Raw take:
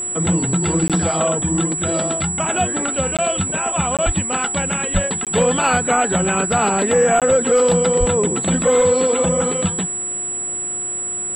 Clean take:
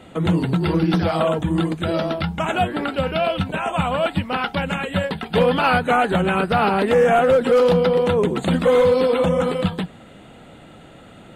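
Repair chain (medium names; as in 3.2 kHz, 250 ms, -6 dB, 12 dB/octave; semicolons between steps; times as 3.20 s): de-hum 360 Hz, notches 6; band-stop 7.8 kHz, Q 30; 4.05–4.17 s: high-pass 140 Hz 24 dB/octave; 4.93–5.05 s: high-pass 140 Hz 24 dB/octave; 7.99–8.11 s: high-pass 140 Hz 24 dB/octave; interpolate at 0.88/3.17/3.97/5.25/7.20 s, 17 ms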